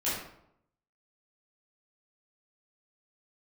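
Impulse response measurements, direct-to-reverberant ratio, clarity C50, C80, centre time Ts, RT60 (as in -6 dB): -11.0 dB, 1.0 dB, 4.5 dB, 61 ms, 0.75 s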